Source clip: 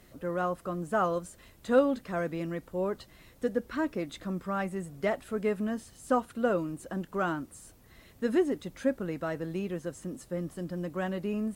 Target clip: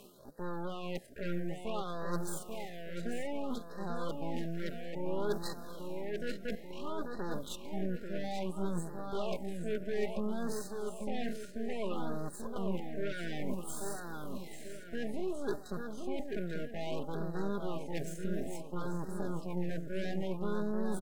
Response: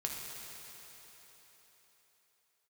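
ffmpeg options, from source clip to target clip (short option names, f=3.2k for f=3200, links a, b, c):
-filter_complex "[0:a]highpass=170,alimiter=limit=-23.5dB:level=0:latency=1:release=17,areverse,acompressor=threshold=-45dB:ratio=6,areverse,equalizer=f=430:w=1.9:g=5,atempo=0.55,aeval=exprs='0.02*(cos(1*acos(clip(val(0)/0.02,-1,1)))-cos(1*PI/2))+0.00251*(cos(4*acos(clip(val(0)/0.02,-1,1)))-cos(4*PI/2))+0.00708*(cos(6*acos(clip(val(0)/0.02,-1,1)))-cos(6*PI/2))':c=same,aecho=1:1:4.9:0.41,asplit=2[a][b];[b]adelay=838,lowpass=f=4.1k:p=1,volume=-5dB,asplit=2[c][d];[d]adelay=838,lowpass=f=4.1k:p=1,volume=0.51,asplit=2[e][f];[f]adelay=838,lowpass=f=4.1k:p=1,volume=0.51,asplit=2[g][h];[h]adelay=838,lowpass=f=4.1k:p=1,volume=0.51,asplit=2[i][j];[j]adelay=838,lowpass=f=4.1k:p=1,volume=0.51,asplit=2[k][l];[l]adelay=838,lowpass=f=4.1k:p=1,volume=0.51[m];[a][c][e][g][i][k][m]amix=inputs=7:normalize=0,afftfilt=real='re*(1-between(b*sr/1024,960*pow(2700/960,0.5+0.5*sin(2*PI*0.59*pts/sr))/1.41,960*pow(2700/960,0.5+0.5*sin(2*PI*0.59*pts/sr))*1.41))':imag='im*(1-between(b*sr/1024,960*pow(2700/960,0.5+0.5*sin(2*PI*0.59*pts/sr))/1.41,960*pow(2700/960,0.5+0.5*sin(2*PI*0.59*pts/sr))*1.41))':win_size=1024:overlap=0.75,volume=4dB"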